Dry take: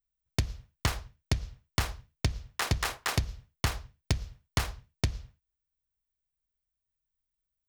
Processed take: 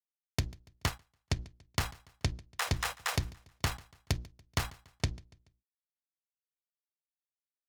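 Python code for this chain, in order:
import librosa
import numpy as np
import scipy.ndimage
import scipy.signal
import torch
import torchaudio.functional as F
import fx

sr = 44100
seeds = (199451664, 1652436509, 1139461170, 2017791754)

p1 = fx.noise_reduce_blind(x, sr, reduce_db=26)
p2 = fx.hum_notches(p1, sr, base_hz=60, count=6)
p3 = fx.level_steps(p2, sr, step_db=23)
p4 = p2 + (p3 * librosa.db_to_amplitude(-2.5))
p5 = np.sign(p4) * np.maximum(np.abs(p4) - 10.0 ** (-48.5 / 20.0), 0.0)
p6 = p5 + fx.echo_feedback(p5, sr, ms=143, feedback_pct=43, wet_db=-22.5, dry=0)
p7 = fx.upward_expand(p6, sr, threshold_db=-53.0, expansion=1.5, at=(0.87, 1.36), fade=0.02)
y = p7 * librosa.db_to_amplitude(-2.5)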